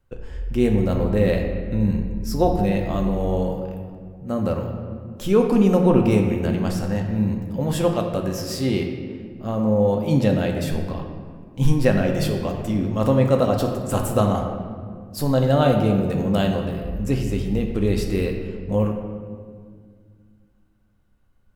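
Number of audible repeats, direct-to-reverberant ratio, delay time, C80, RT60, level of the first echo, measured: none, 2.0 dB, none, 6.0 dB, 2.0 s, none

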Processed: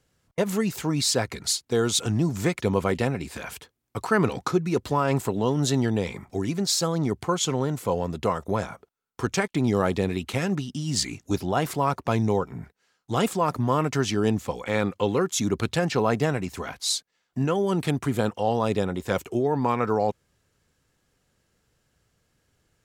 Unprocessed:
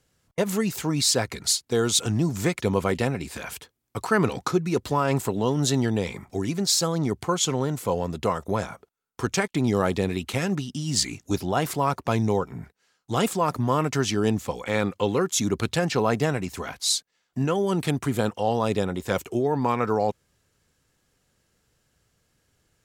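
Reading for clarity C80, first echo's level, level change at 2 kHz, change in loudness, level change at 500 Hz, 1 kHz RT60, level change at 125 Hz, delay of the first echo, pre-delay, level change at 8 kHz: none, none, -0.5 dB, -0.5 dB, 0.0 dB, none, 0.0 dB, none, none, -3.0 dB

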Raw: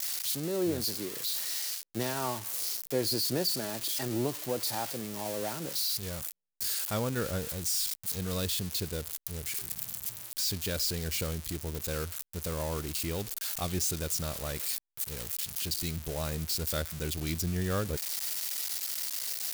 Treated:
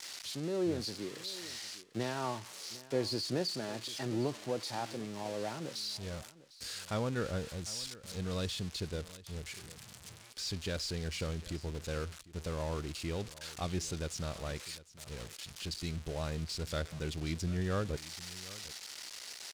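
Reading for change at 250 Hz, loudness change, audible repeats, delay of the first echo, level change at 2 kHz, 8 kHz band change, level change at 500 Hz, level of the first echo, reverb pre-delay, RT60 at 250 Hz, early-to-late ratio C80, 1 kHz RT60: -2.5 dB, -6.5 dB, 1, 0.752 s, -3.5 dB, -10.5 dB, -2.5 dB, -18.5 dB, none, none, none, none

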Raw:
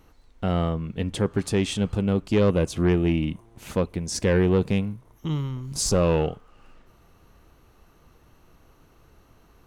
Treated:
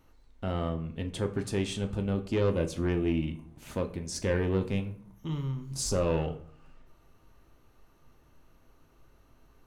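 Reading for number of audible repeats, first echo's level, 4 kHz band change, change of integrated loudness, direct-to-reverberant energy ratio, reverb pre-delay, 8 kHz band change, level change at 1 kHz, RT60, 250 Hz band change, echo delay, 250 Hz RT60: none, none, -7.0 dB, -7.0 dB, 6.0 dB, 3 ms, -7.0 dB, -7.0 dB, 0.55 s, -7.5 dB, none, 0.90 s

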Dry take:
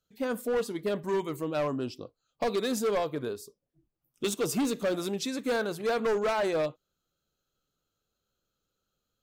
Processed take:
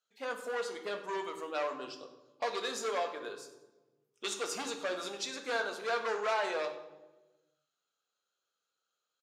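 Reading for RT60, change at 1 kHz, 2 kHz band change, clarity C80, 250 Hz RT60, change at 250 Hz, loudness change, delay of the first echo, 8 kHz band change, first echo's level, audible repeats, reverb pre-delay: 1.2 s, -1.5 dB, 0.0 dB, 11.0 dB, 1.6 s, -15.5 dB, -5.5 dB, 98 ms, -3.5 dB, -16.0 dB, 1, 3 ms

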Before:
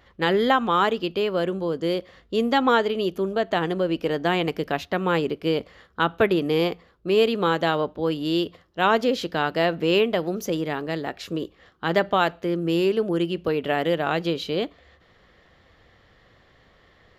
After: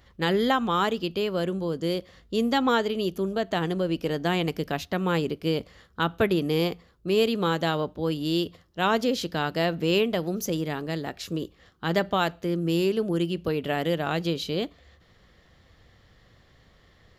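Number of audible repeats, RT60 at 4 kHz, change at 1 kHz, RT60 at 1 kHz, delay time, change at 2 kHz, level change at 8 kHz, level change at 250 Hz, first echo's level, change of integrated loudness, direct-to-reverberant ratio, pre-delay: none, none, -4.5 dB, none, none, -4.0 dB, +3.5 dB, -1.5 dB, none, -3.0 dB, none, none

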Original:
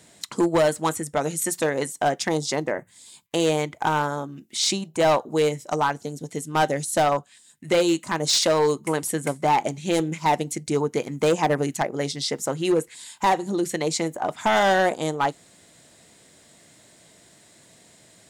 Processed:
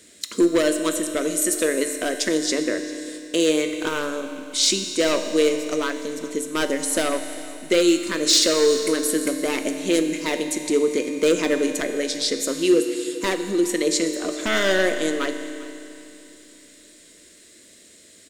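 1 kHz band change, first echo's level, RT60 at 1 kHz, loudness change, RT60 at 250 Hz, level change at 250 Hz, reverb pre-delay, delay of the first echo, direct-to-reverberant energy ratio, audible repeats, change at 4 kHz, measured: -9.5 dB, -19.5 dB, 2.9 s, +2.0 dB, 2.9 s, +4.5 dB, 7 ms, 0.398 s, 6.0 dB, 1, +4.5 dB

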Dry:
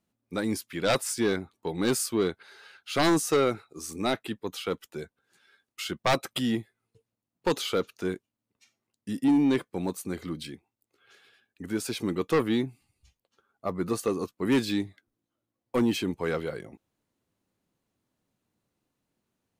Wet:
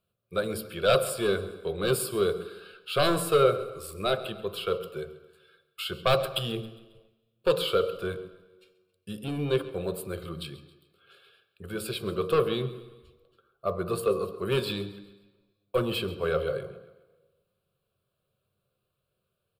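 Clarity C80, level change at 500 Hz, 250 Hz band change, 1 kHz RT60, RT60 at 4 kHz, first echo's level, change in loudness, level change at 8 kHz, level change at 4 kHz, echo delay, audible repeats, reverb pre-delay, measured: 13.0 dB, +3.0 dB, -7.5 dB, 1.2 s, 1.1 s, -18.5 dB, 0.0 dB, -4.0 dB, +1.5 dB, 0.135 s, 3, 3 ms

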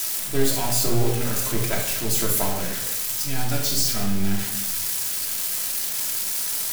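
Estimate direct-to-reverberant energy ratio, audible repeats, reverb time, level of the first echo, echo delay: -2.0 dB, none, 1.0 s, none, none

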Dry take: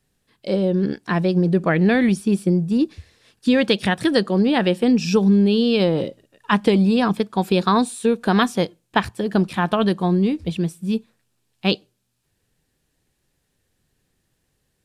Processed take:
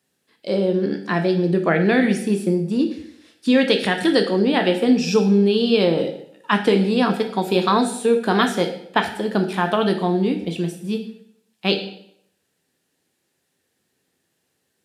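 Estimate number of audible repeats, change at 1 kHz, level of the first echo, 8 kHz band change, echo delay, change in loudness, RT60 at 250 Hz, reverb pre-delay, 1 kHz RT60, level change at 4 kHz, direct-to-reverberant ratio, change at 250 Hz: none, +1.0 dB, none, +1.5 dB, none, 0.0 dB, 0.75 s, 9 ms, 0.70 s, +1.5 dB, 4.5 dB, -1.5 dB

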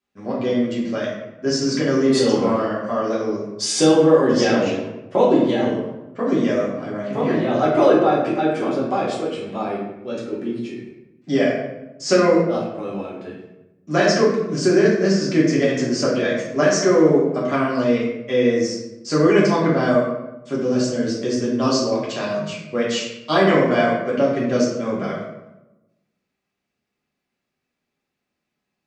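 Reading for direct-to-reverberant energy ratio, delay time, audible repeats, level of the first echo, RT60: -7.5 dB, none, none, none, 0.95 s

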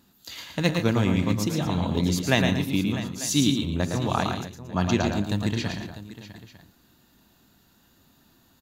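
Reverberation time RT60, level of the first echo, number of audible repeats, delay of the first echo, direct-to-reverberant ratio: none, -5.5 dB, 4, 0.111 s, none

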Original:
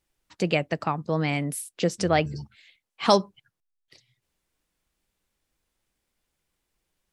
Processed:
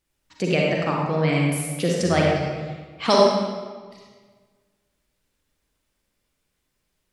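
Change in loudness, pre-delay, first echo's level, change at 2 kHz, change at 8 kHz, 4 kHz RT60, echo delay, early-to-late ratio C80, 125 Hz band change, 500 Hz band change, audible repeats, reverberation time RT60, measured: +4.0 dB, 38 ms, none, +4.0 dB, +3.5 dB, 1.1 s, none, 1.0 dB, +5.5 dB, +5.5 dB, none, 1.5 s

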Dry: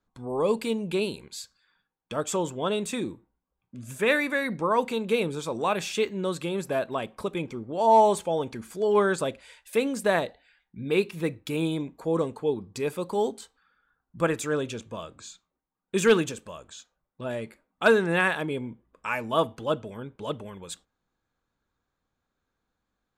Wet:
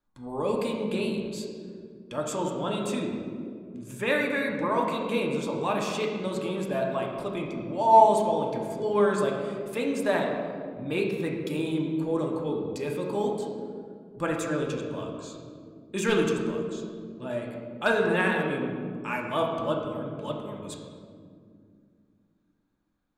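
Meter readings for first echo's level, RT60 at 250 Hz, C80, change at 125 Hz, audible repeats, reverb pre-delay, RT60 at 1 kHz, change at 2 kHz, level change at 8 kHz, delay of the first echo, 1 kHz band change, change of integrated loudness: none, 3.8 s, 4.5 dB, +0.5 dB, none, 3 ms, 1.9 s, -2.0 dB, -4.0 dB, none, +1.5 dB, -1.0 dB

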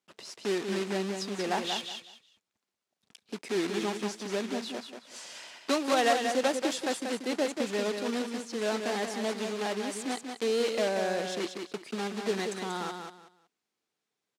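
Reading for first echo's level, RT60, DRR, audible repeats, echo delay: -6.0 dB, none, none, 3, 0.186 s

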